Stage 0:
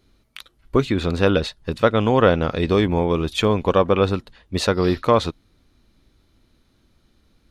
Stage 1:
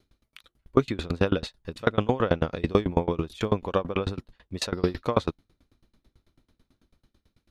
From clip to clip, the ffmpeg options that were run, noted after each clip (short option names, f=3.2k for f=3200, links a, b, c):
-filter_complex "[0:a]acrossover=split=1400[a][b];[a]dynaudnorm=f=110:g=11:m=3dB[c];[c][b]amix=inputs=2:normalize=0,aeval=exprs='val(0)*pow(10,-28*if(lt(mod(9.1*n/s,1),2*abs(9.1)/1000),1-mod(9.1*n/s,1)/(2*abs(9.1)/1000),(mod(9.1*n/s,1)-2*abs(9.1)/1000)/(1-2*abs(9.1)/1000))/20)':c=same"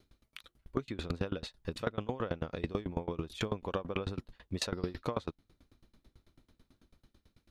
-af "acompressor=threshold=-31dB:ratio=8"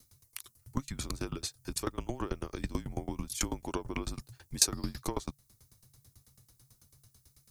-af "afreqshift=-140,aexciter=amount=7.7:drive=6.3:freq=5k"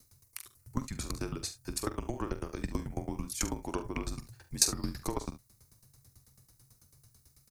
-filter_complex "[0:a]equalizer=f=3.3k:w=3.5:g=-6.5,asplit=2[a][b];[b]aecho=0:1:45|71:0.266|0.168[c];[a][c]amix=inputs=2:normalize=0"